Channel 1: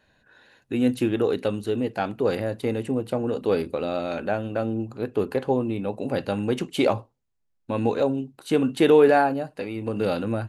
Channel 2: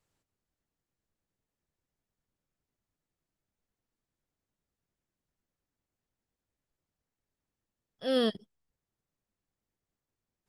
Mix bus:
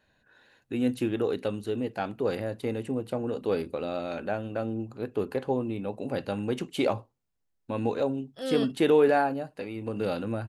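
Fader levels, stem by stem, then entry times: -5.0, -4.0 dB; 0.00, 0.35 s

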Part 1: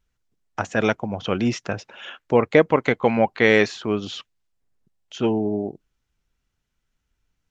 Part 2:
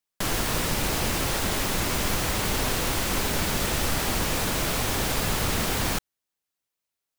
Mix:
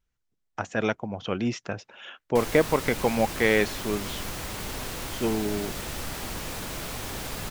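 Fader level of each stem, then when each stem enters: -5.5, -8.5 dB; 0.00, 2.15 s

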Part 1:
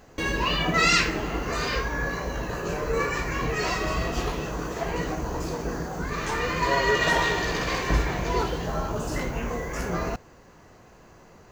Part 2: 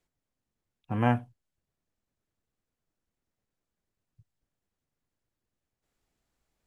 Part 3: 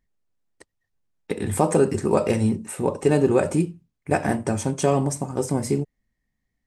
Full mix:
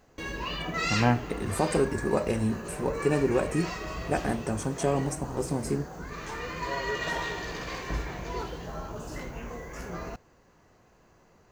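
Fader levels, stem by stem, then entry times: -9.0, +1.5, -6.5 dB; 0.00, 0.00, 0.00 s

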